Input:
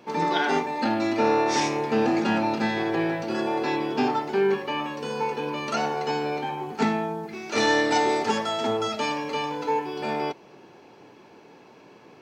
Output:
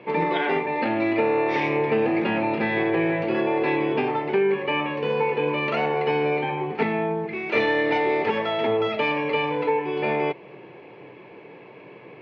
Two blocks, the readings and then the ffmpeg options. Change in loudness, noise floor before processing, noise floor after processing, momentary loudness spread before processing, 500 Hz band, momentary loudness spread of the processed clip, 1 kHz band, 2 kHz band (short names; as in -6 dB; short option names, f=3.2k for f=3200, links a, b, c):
+2.0 dB, -51 dBFS, -45 dBFS, 8 LU, +3.5 dB, 4 LU, -0.5 dB, +3.5 dB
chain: -af "acompressor=threshold=-24dB:ratio=6,highpass=110,equalizer=f=130:t=q:w=4:g=5,equalizer=f=240:t=q:w=4:g=-8,equalizer=f=490:t=q:w=4:g=3,equalizer=f=810:t=q:w=4:g=-5,equalizer=f=1.4k:t=q:w=4:g=-8,equalizer=f=2.2k:t=q:w=4:g=6,lowpass=f=2.9k:w=0.5412,lowpass=f=2.9k:w=1.3066,volume=6.5dB"